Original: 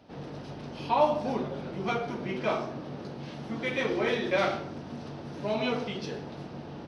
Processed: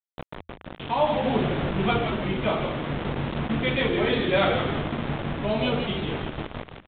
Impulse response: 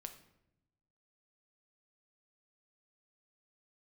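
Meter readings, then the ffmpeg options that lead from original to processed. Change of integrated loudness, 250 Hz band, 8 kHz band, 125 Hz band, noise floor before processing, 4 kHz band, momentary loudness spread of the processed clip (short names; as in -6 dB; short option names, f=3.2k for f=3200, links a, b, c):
+6.0 dB, +7.0 dB, n/a, +10.0 dB, -43 dBFS, +8.0 dB, 14 LU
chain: -filter_complex "[0:a]bandreject=f=60:t=h:w=6,bandreject=f=120:t=h:w=6,bandreject=f=180:t=h:w=6,bandreject=f=240:t=h:w=6,bandreject=f=300:t=h:w=6,bandreject=f=360:t=h:w=6,bandreject=f=420:t=h:w=6,bandreject=f=480:t=h:w=6,bandreject=f=540:t=h:w=6,afftdn=nr=12:nf=-45,lowshelf=f=170:g=10.5,dynaudnorm=f=310:g=7:m=6dB,aexciter=amount=2:drive=5.1:freq=3.1k,aresample=16000,acrusher=bits=4:mix=0:aa=0.000001,aresample=44100,tremolo=f=0.61:d=0.36,asplit=2[a][b];[b]asplit=5[c][d][e][f][g];[c]adelay=167,afreqshift=-83,volume=-7.5dB[h];[d]adelay=334,afreqshift=-166,volume=-14.2dB[i];[e]adelay=501,afreqshift=-249,volume=-21dB[j];[f]adelay=668,afreqshift=-332,volume=-27.7dB[k];[g]adelay=835,afreqshift=-415,volume=-34.5dB[l];[h][i][j][k][l]amix=inputs=5:normalize=0[m];[a][m]amix=inputs=2:normalize=0,aresample=8000,aresample=44100"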